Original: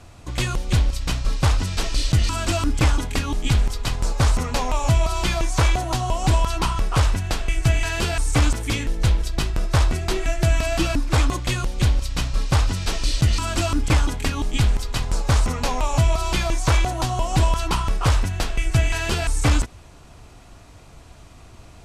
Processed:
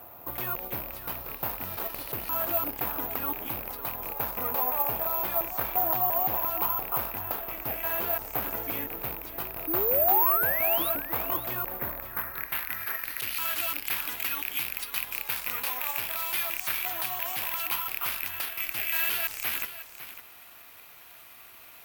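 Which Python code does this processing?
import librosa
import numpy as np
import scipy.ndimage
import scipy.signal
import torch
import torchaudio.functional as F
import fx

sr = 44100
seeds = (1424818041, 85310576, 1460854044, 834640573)

p1 = fx.rattle_buzz(x, sr, strikes_db=-20.0, level_db=-14.0)
p2 = fx.high_shelf_res(p1, sr, hz=2400.0, db=-9.5, q=3.0, at=(11.66, 13.2))
p3 = fx.over_compress(p2, sr, threshold_db=-28.0, ratio=-1.0)
p4 = p2 + (p3 * librosa.db_to_amplitude(-2.0))
p5 = 10.0 ** (-13.0 / 20.0) * (np.abs((p4 / 10.0 ** (-13.0 / 20.0) + 3.0) % 4.0 - 2.0) - 1.0)
p6 = fx.spec_paint(p5, sr, seeds[0], shape='rise', start_s=9.67, length_s=1.23, low_hz=300.0, high_hz=4000.0, level_db=-20.0)
p7 = fx.filter_sweep_bandpass(p6, sr, from_hz=790.0, to_hz=2300.0, start_s=12.03, end_s=12.54, q=1.1)
p8 = (np.kron(p7[::3], np.eye(3)[0]) * 3)[:len(p7)]
p9 = p8 + fx.echo_single(p8, sr, ms=553, db=-12.5, dry=0)
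y = p9 * librosa.db_to_amplitude(-6.0)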